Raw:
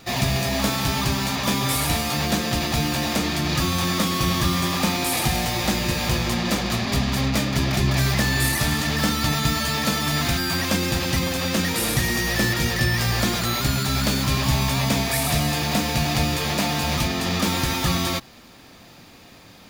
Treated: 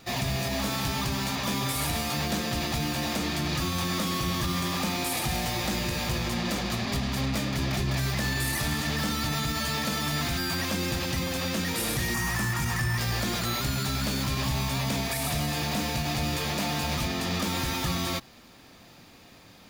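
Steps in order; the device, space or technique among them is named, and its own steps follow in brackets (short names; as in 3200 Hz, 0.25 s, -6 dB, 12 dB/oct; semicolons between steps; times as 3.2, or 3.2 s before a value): 12.14–12.98 graphic EQ 125/500/1000/4000/8000 Hz +5/-12/+10/-7/+5 dB; limiter into clipper (limiter -13 dBFS, peak gain reduction 6 dB; hard clip -17 dBFS, distortion -21 dB); gain -5 dB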